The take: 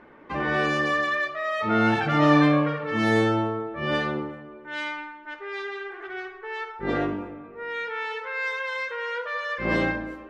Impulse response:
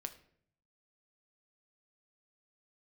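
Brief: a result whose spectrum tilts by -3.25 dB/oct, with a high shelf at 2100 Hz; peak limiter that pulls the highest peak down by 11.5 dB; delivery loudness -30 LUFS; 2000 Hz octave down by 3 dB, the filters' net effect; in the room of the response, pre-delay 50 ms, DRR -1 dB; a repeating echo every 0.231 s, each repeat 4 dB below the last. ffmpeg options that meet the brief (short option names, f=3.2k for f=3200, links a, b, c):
-filter_complex "[0:a]equalizer=f=2k:t=o:g=-5.5,highshelf=f=2.1k:g=3.5,alimiter=limit=-19dB:level=0:latency=1,aecho=1:1:231|462|693|924|1155|1386|1617|1848|2079:0.631|0.398|0.25|0.158|0.0994|0.0626|0.0394|0.0249|0.0157,asplit=2[a][b];[1:a]atrim=start_sample=2205,adelay=50[c];[b][c]afir=irnorm=-1:irlink=0,volume=3.5dB[d];[a][d]amix=inputs=2:normalize=0,volume=-5.5dB"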